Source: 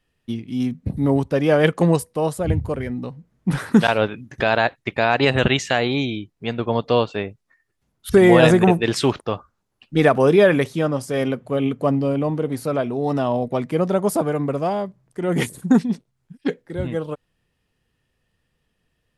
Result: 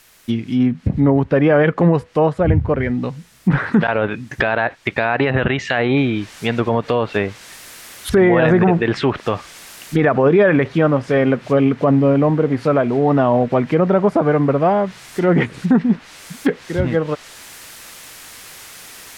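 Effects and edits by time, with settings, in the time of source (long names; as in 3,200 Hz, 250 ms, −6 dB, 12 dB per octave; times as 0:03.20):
0:05.97: noise floor change −57 dB −44 dB
whole clip: brickwall limiter −12.5 dBFS; parametric band 1,800 Hz +4.5 dB 1 octave; treble cut that deepens with the level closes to 2,000 Hz, closed at −19.5 dBFS; level +7 dB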